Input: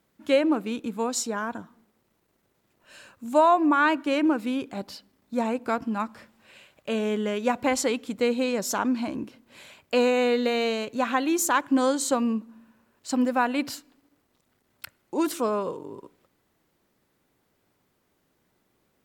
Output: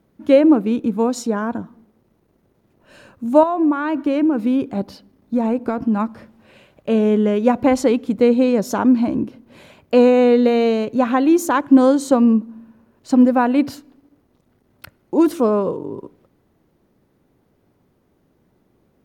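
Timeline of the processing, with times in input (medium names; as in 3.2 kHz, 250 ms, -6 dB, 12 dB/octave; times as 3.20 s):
3.43–5.99 s: compression, threshold -24 dBFS
whole clip: tilt shelf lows +7.5 dB, about 900 Hz; band-stop 7.6 kHz, Q 8.4; trim +5.5 dB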